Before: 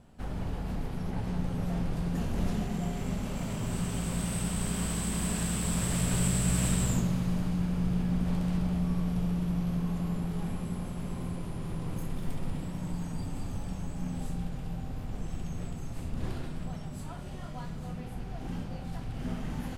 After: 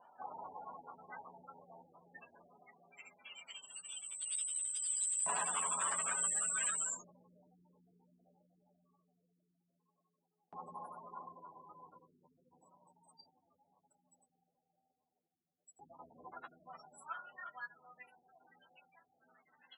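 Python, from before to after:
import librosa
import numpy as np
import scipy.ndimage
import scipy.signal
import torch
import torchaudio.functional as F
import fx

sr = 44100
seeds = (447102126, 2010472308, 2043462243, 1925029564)

y = fx.spec_gate(x, sr, threshold_db=-25, keep='strong')
y = fx.filter_lfo_highpass(y, sr, shape='saw_up', hz=0.19, low_hz=900.0, high_hz=5600.0, q=3.2)
y = fx.doubler(y, sr, ms=12.0, db=-7)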